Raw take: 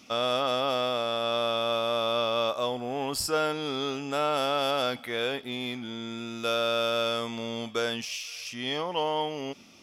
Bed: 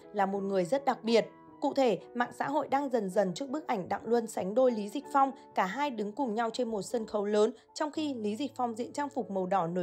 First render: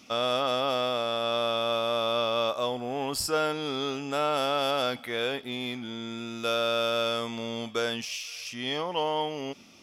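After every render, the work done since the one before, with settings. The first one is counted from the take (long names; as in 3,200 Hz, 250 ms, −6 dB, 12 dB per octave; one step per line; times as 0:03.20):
no processing that can be heard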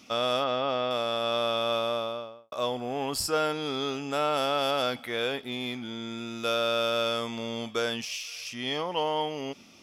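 0:00.44–0:00.91: high-frequency loss of the air 170 metres
0:01.76–0:02.52: fade out and dull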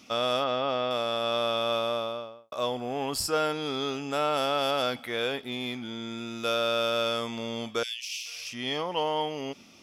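0:07.83–0:08.26: Butterworth high-pass 2,200 Hz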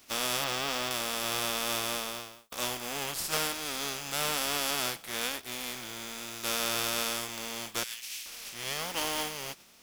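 compressing power law on the bin magnitudes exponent 0.3
flanger 1.1 Hz, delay 2.6 ms, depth 3.6 ms, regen −33%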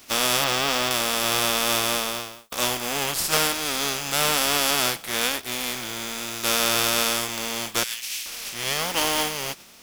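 level +9 dB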